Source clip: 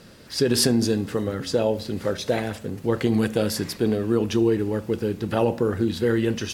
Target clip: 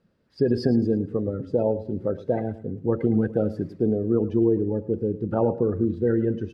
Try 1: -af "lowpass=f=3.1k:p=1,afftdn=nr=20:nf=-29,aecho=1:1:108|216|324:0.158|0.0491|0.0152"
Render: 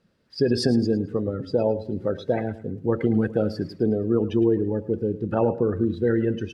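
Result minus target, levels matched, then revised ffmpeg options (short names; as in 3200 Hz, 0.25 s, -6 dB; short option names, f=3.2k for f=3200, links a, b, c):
4000 Hz band +10.5 dB
-af "lowpass=f=1.2k:p=1,afftdn=nr=20:nf=-29,aecho=1:1:108|216|324:0.158|0.0491|0.0152"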